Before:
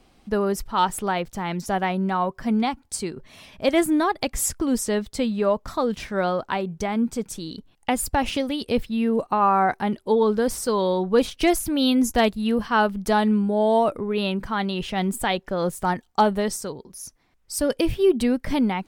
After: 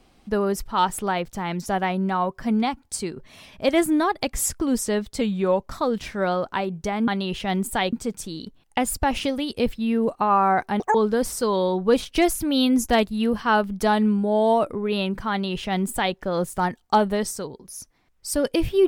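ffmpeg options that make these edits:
ffmpeg -i in.wav -filter_complex "[0:a]asplit=7[link_01][link_02][link_03][link_04][link_05][link_06][link_07];[link_01]atrim=end=5.214[link_08];[link_02]atrim=start=5.21:end=5.63,asetpts=PTS-STARTPTS,asetrate=40572,aresample=44100[link_09];[link_03]atrim=start=5.626:end=7.042[link_10];[link_04]atrim=start=14.558:end=15.412[link_11];[link_05]atrim=start=7.038:end=9.914[link_12];[link_06]atrim=start=9.91:end=10.2,asetpts=PTS-STARTPTS,asetrate=85554,aresample=44100,atrim=end_sample=6592,asetpts=PTS-STARTPTS[link_13];[link_07]atrim=start=10.196[link_14];[link_08][link_09]acrossfade=duration=0.004:curve1=hsin:curve2=hsin[link_15];[link_15][link_10]acrossfade=duration=0.004:curve1=hsin:curve2=hsin[link_16];[link_16][link_11]acrossfade=duration=0.004:curve1=hsin:curve2=hsin[link_17];[link_17][link_12]acrossfade=duration=0.004:curve1=hsin:curve2=hsin[link_18];[link_18][link_13]acrossfade=duration=0.004:curve1=hsin:curve2=hsin[link_19];[link_19][link_14]acrossfade=duration=0.004:curve1=hsin:curve2=hsin" out.wav

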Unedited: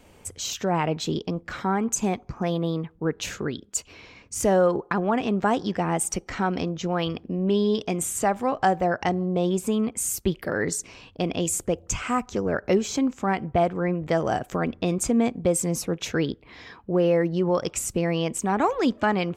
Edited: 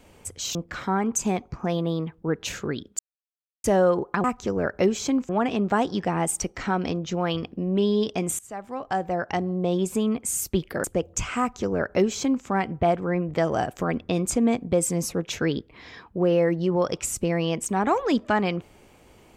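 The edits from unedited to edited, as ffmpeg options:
ffmpeg -i in.wav -filter_complex "[0:a]asplit=8[link_01][link_02][link_03][link_04][link_05][link_06][link_07][link_08];[link_01]atrim=end=0.552[link_09];[link_02]atrim=start=1.318:end=3.76,asetpts=PTS-STARTPTS,afade=type=out:start_time=2.438:duration=0.004:curve=hsin[link_10];[link_03]atrim=start=3.76:end=4.41,asetpts=PTS-STARTPTS,volume=0[link_11];[link_04]atrim=start=4.41:end=5.012,asetpts=PTS-STARTPTS,afade=type=in:duration=0.004:curve=hsin[link_12];[link_05]atrim=start=12.128:end=13.182[link_13];[link_06]atrim=start=5.008:end=8.11,asetpts=PTS-STARTPTS,afade=type=out:start_time=3.098:duration=0.004:curve=hsin:silence=0.0841395[link_14];[link_07]atrim=start=8.11:end=10.562,asetpts=PTS-STARTPTS,afade=type=in:duration=1.7:curve=qsin:silence=0.0841395[link_15];[link_08]atrim=start=11.568[link_16];[link_10][link_11][link_12]concat=n=3:v=0:a=1[link_17];[link_09][link_17]acrossfade=duration=0.004:curve1=hsin:curve2=hsin[link_18];[link_18][link_13]acrossfade=duration=0.004:curve1=hsin:curve2=hsin[link_19];[link_14][link_15]concat=n=2:v=0:a=1[link_20];[link_19][link_20]acrossfade=duration=0.004:curve1=hsin:curve2=hsin[link_21];[link_21][link_16]acrossfade=duration=0.004:curve1=hsin:curve2=hsin" out.wav

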